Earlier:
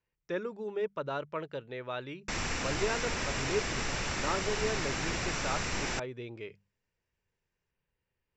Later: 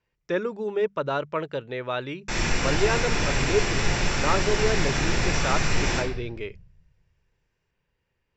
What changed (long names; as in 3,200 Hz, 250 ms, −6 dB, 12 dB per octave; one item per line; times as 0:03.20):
speech +8.5 dB
reverb: on, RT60 0.75 s